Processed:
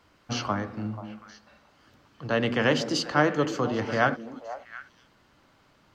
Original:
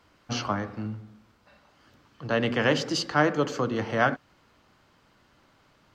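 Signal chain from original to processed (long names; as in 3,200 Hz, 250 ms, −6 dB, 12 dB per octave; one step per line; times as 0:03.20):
echo through a band-pass that steps 243 ms, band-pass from 270 Hz, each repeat 1.4 octaves, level −8 dB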